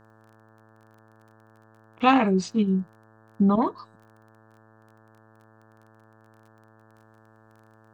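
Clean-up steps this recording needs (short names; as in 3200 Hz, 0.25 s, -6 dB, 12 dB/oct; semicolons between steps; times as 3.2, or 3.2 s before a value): de-click; de-hum 110 Hz, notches 16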